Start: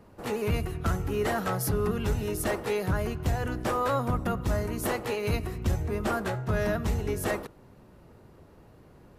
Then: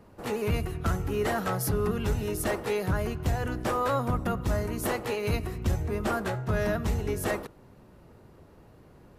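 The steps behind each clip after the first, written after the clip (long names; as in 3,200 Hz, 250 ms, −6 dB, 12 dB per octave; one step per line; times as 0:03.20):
no processing that can be heard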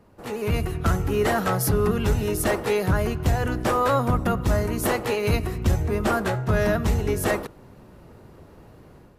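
automatic gain control gain up to 7.5 dB
level −1.5 dB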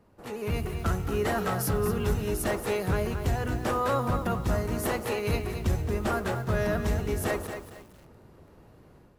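feedback echo at a low word length 228 ms, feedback 35%, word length 7 bits, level −8 dB
level −6 dB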